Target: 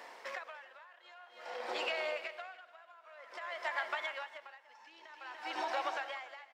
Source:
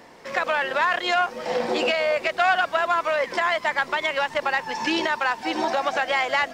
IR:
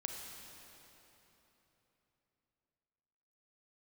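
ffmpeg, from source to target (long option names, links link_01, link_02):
-filter_complex "[0:a]highpass=660,acompressor=threshold=-33dB:ratio=6,aecho=1:1:292:0.355,asplit=2[link_01][link_02];[1:a]atrim=start_sample=2205,asetrate=39690,aresample=44100,lowpass=4400[link_03];[link_02][link_03]afir=irnorm=-1:irlink=0,volume=-4.5dB[link_04];[link_01][link_04]amix=inputs=2:normalize=0,aeval=exprs='val(0)*pow(10,-23*(0.5-0.5*cos(2*PI*0.52*n/s))/20)':channel_layout=same,volume=-3.5dB"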